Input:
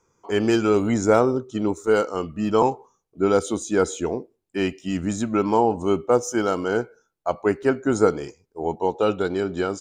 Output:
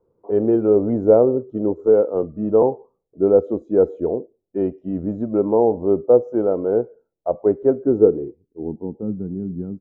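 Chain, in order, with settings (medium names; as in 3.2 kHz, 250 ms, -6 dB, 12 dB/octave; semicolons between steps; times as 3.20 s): low-pass sweep 540 Hz -> 200 Hz, 7.67–9.15 s; 1.79–2.23 s: three bands compressed up and down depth 40%; trim -1 dB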